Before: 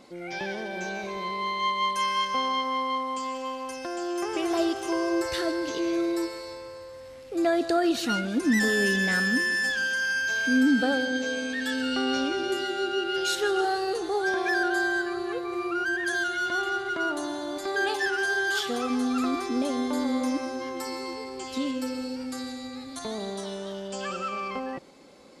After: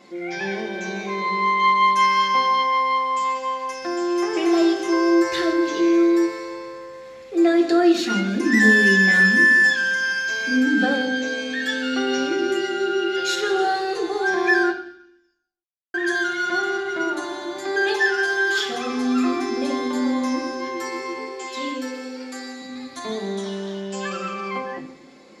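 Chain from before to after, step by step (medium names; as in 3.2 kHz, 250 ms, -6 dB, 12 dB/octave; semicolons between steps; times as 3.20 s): 14.71–15.94 s: mute; 21.18–22.62 s: high-pass 280 Hz 24 dB/octave; reverberation RT60 0.65 s, pre-delay 3 ms, DRR -1.5 dB; trim -3 dB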